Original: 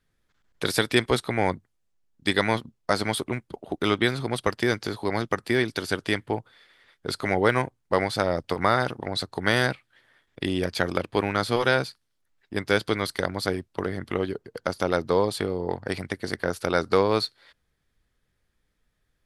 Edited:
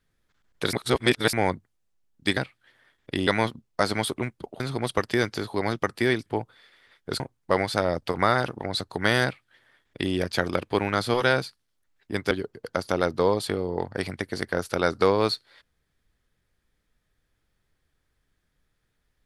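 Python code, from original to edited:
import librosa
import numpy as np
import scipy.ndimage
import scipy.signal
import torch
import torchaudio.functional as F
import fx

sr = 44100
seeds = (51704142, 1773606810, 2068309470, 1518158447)

y = fx.edit(x, sr, fx.reverse_span(start_s=0.73, length_s=0.6),
    fx.cut(start_s=3.7, length_s=0.39),
    fx.cut(start_s=5.75, length_s=0.48),
    fx.cut(start_s=7.17, length_s=0.45),
    fx.duplicate(start_s=9.66, length_s=0.9, to_s=2.37),
    fx.cut(start_s=12.73, length_s=1.49), tone=tone)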